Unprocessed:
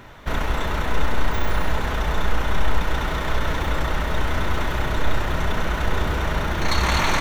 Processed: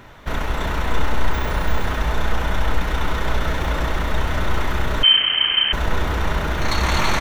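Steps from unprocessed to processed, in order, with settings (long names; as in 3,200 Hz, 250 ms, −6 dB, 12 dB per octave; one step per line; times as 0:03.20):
single-tap delay 333 ms −5.5 dB
0:05.03–0:05.73: voice inversion scrambler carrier 3,100 Hz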